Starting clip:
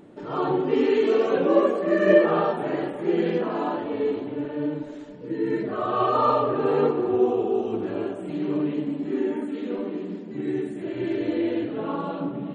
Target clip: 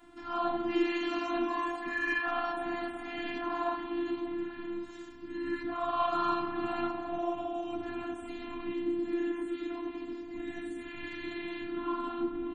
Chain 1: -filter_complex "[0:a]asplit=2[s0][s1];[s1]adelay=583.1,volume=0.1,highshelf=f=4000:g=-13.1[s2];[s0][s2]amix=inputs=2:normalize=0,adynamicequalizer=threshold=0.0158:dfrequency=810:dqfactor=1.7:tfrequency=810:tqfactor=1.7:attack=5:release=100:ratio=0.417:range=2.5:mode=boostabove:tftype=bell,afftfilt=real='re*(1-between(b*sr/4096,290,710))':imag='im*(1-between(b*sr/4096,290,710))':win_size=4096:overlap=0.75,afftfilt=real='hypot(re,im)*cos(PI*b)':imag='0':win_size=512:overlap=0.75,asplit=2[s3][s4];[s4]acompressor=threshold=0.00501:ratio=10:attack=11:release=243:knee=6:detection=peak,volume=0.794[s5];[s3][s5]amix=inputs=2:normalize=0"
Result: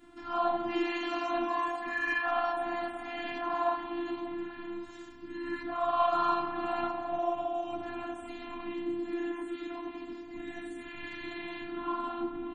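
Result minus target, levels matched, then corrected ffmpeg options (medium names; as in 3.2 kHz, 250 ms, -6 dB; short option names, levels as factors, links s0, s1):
250 Hz band -3.5 dB
-filter_complex "[0:a]asplit=2[s0][s1];[s1]adelay=583.1,volume=0.1,highshelf=f=4000:g=-13.1[s2];[s0][s2]amix=inputs=2:normalize=0,adynamicequalizer=threshold=0.0158:dfrequency=210:dqfactor=1.7:tfrequency=210:tqfactor=1.7:attack=5:release=100:ratio=0.417:range=2.5:mode=boostabove:tftype=bell,afftfilt=real='re*(1-between(b*sr/4096,290,710))':imag='im*(1-between(b*sr/4096,290,710))':win_size=4096:overlap=0.75,afftfilt=real='hypot(re,im)*cos(PI*b)':imag='0':win_size=512:overlap=0.75,asplit=2[s3][s4];[s4]acompressor=threshold=0.00501:ratio=10:attack=11:release=243:knee=6:detection=peak,volume=0.794[s5];[s3][s5]amix=inputs=2:normalize=0"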